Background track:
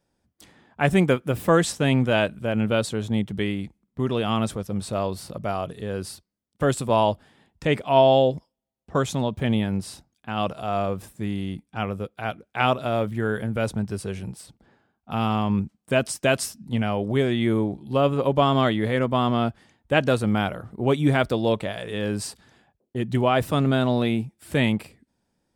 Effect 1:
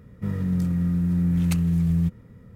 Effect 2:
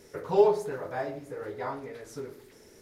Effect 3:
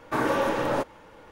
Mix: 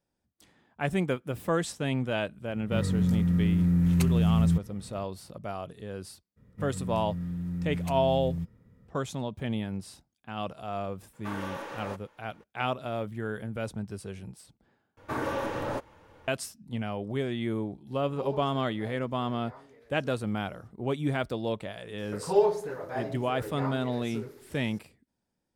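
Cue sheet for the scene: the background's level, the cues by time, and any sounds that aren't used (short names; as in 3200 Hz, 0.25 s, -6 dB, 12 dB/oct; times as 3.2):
background track -9 dB
2.49 add 1 -1.5 dB
6.36 add 1 -11 dB, fades 0.02 s
11.13 add 3 -10 dB + low shelf 490 Hz -9.5 dB
14.97 replace with 3 -7 dB + bell 86 Hz +12.5 dB
17.87 add 2 -16 dB
21.98 add 2 -1.5 dB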